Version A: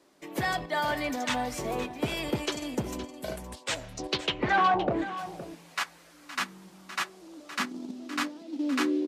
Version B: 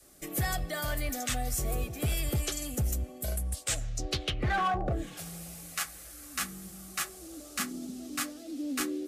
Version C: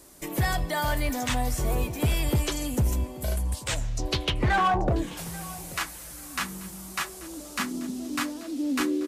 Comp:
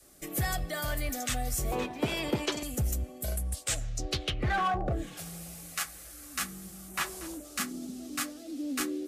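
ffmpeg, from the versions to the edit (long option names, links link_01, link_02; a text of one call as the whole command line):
ffmpeg -i take0.wav -i take1.wav -i take2.wav -filter_complex "[1:a]asplit=3[link_01][link_02][link_03];[link_01]atrim=end=1.722[link_04];[0:a]atrim=start=1.718:end=2.632[link_05];[link_02]atrim=start=2.628:end=7.03[link_06];[2:a]atrim=start=6.87:end=7.46[link_07];[link_03]atrim=start=7.3[link_08];[link_04][link_05]acrossfade=duration=0.004:curve1=hsin:curve2=hsin[link_09];[link_09][link_06]acrossfade=duration=0.004:curve1=hsin:curve2=hsin[link_10];[link_10][link_07]acrossfade=duration=0.16:curve1=tri:curve2=tri[link_11];[link_11][link_08]acrossfade=duration=0.16:curve1=tri:curve2=tri" out.wav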